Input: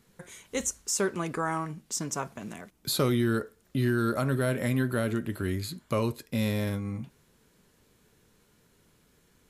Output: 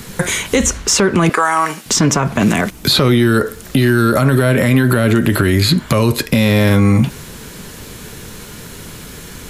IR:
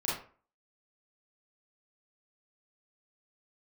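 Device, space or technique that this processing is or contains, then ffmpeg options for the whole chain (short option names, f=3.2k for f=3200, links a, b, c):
mastering chain: -filter_complex "[0:a]asettb=1/sr,asplit=3[a][b][c];[a]atrim=end=1.294[d];[b]atrim=start=1.29:end=1.86,asetpts=PTS-STARTPTS,afade=t=in:d=0.004:c=qsin,afade=t=out:st=0.566:d=0.004:c=qsin,highpass=650[e];[c]atrim=start=1.856[f];[d][e]acrossfade=d=0.004:c1=hsin:c2=qsin[g];[g][f]acrossfade=d=0.004:c1=qsin:c2=hsin,equalizer=f=490:t=o:w=3:g=-3.5,acrossover=split=260|3900[h][i][j];[h]acompressor=threshold=-39dB:ratio=4[k];[i]acompressor=threshold=-37dB:ratio=4[l];[j]acompressor=threshold=-55dB:ratio=4[m];[k][l][m]amix=inputs=3:normalize=0,acompressor=threshold=-40dB:ratio=2,asoftclip=type=tanh:threshold=-27.5dB,alimiter=level_in=36dB:limit=-1dB:release=50:level=0:latency=1,volume=-3dB"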